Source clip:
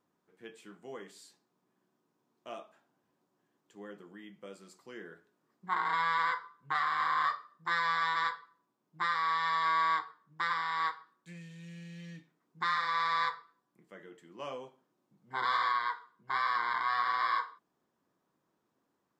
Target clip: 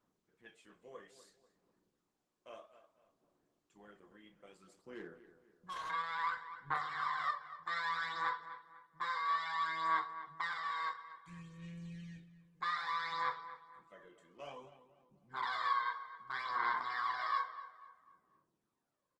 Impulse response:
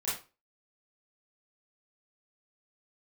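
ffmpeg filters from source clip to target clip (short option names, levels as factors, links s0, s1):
-filter_complex "[0:a]aphaser=in_gain=1:out_gain=1:delay=1.9:decay=0.59:speed=0.6:type=sinusoidal,asettb=1/sr,asplit=3[s0][s1][s2];[s0]atrim=end=4.614[s3];[s1]atrim=start=4.61:end=5.9,asetpts=PTS-STARTPTS,afade=t=in:d=0.004:c=qsin,afade=t=out:st=1.286:d=0.004:c=qsin,volume=39.8,asoftclip=hard,volume=0.0251[s4];[s2]atrim=start=5.896[s5];[s3][s4]acrossfade=d=0.004:c1=hsin:c2=qsin[s6];[s6][s5]acrossfade=d=0.004:c1=qsin:c2=hsin,asplit=2[s7][s8];[s8]adelay=28,volume=0.355[s9];[s7][s9]amix=inputs=2:normalize=0,asplit=2[s10][s11];[s11]adelay=247,lowpass=f=2500:p=1,volume=0.224,asplit=2[s12][s13];[s13]adelay=247,lowpass=f=2500:p=1,volume=0.4,asplit=2[s14][s15];[s15]adelay=247,lowpass=f=2500:p=1,volume=0.4,asplit=2[s16][s17];[s17]adelay=247,lowpass=f=2500:p=1,volume=0.4[s18];[s10][s12][s14][s16][s18]amix=inputs=5:normalize=0,asplit=2[s19][s20];[1:a]atrim=start_sample=2205,highshelf=f=4700:g=-3[s21];[s20][s21]afir=irnorm=-1:irlink=0,volume=0.0422[s22];[s19][s22]amix=inputs=2:normalize=0,aresample=32000,aresample=44100,volume=0.355" -ar 48000 -c:a libopus -b:a 16k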